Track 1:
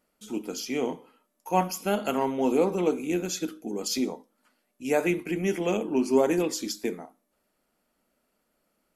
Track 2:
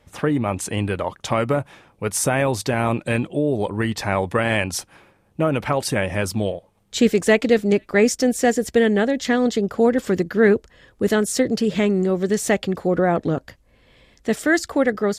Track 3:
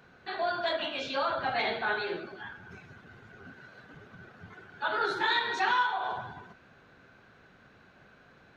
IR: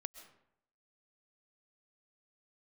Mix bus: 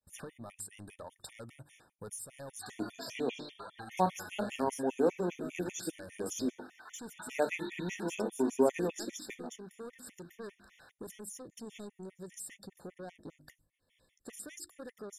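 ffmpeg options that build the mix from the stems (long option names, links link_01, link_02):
-filter_complex "[0:a]agate=range=-8dB:threshold=-48dB:ratio=16:detection=peak,highshelf=frequency=4200:gain=-6,adelay=2450,volume=-4.5dB[link_01];[1:a]agate=range=-33dB:threshold=-47dB:ratio=3:detection=peak,asoftclip=type=tanh:threshold=-18.5dB,volume=-12.5dB[link_02];[2:a]acompressor=threshold=-33dB:ratio=6,highpass=frequency=650:width=0.5412,highpass=frequency=650:width=1.3066,adelay=2350,volume=2dB[link_03];[link_02][link_03]amix=inputs=2:normalize=0,equalizer=frequency=11000:width_type=o:width=1.1:gain=14.5,acompressor=threshold=-42dB:ratio=10,volume=0dB[link_04];[link_01][link_04]amix=inputs=2:normalize=0,equalizer=frequency=8100:width=2.4:gain=4,bandreject=frequency=50.23:width_type=h:width=4,bandreject=frequency=100.46:width_type=h:width=4,bandreject=frequency=150.69:width_type=h:width=4,bandreject=frequency=200.92:width_type=h:width=4,bandreject=frequency=251.15:width_type=h:width=4,bandreject=frequency=301.38:width_type=h:width=4,bandreject=frequency=351.61:width_type=h:width=4,afftfilt=real='re*gt(sin(2*PI*5*pts/sr)*(1-2*mod(floor(b*sr/1024/1800),2)),0)':imag='im*gt(sin(2*PI*5*pts/sr)*(1-2*mod(floor(b*sr/1024/1800),2)),0)':win_size=1024:overlap=0.75"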